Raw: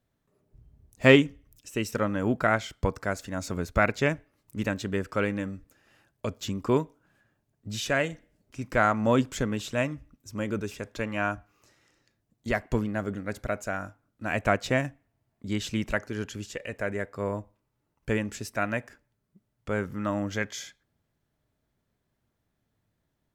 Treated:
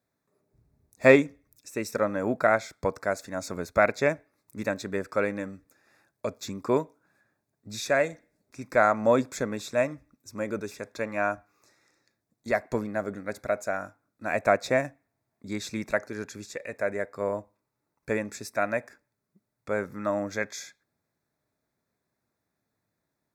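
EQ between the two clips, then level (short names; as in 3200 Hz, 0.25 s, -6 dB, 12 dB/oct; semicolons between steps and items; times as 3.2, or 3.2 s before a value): HPF 260 Hz 6 dB/oct; dynamic EQ 600 Hz, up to +6 dB, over -41 dBFS, Q 2.3; Butterworth band-stop 3000 Hz, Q 3.1; 0.0 dB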